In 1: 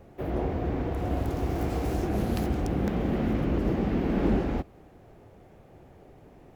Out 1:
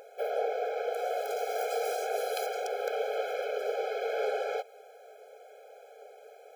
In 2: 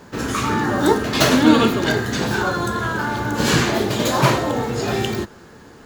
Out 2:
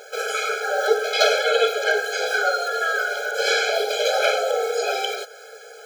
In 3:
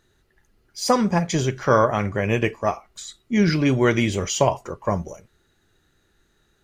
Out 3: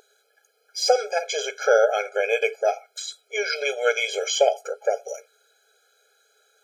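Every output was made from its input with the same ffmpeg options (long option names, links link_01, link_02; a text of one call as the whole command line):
ffmpeg -i in.wav -filter_complex "[0:a]acrossover=split=4900[link_01][link_02];[link_02]acompressor=threshold=-41dB:ratio=4:attack=1:release=60[link_03];[link_01][link_03]amix=inputs=2:normalize=0,aeval=exprs='val(0)+0.0224*(sin(2*PI*60*n/s)+sin(2*PI*2*60*n/s)/2+sin(2*PI*3*60*n/s)/3+sin(2*PI*4*60*n/s)/4+sin(2*PI*5*60*n/s)/5)':channel_layout=same,asplit=2[link_04][link_05];[link_05]acompressor=threshold=-27dB:ratio=6,volume=0.5dB[link_06];[link_04][link_06]amix=inputs=2:normalize=0,equalizer=frequency=860:width=0.43:gain=-4.5,afftfilt=real='re*eq(mod(floor(b*sr/1024/430),2),1)':imag='im*eq(mod(floor(b*sr/1024/430),2),1)':win_size=1024:overlap=0.75,volume=4dB" out.wav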